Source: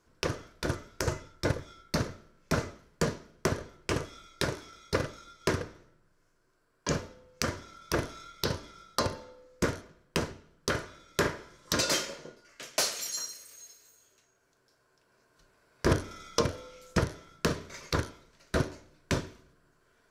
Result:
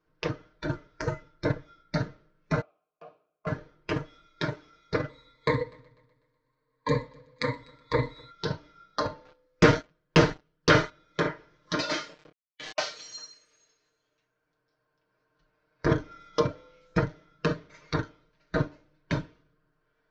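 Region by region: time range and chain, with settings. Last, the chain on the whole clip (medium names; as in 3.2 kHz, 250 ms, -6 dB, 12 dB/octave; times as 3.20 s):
2.61–3.47 s: vowel filter a + hum notches 60/120/180/240/300/360/420/480 Hz
5.09–8.31 s: rippled EQ curve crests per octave 1, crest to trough 15 dB + multi-head delay 124 ms, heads first and second, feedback 40%, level -22 dB
9.25–10.90 s: treble shelf 3.5 kHz +7 dB + waveshaping leveller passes 3
11.95–13.21 s: small samples zeroed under -41 dBFS + doubling 27 ms -14 dB + swell ahead of each attack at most 67 dB/s
whole clip: comb 6.5 ms, depth 73%; spectral noise reduction 8 dB; Bessel low-pass 3.3 kHz, order 8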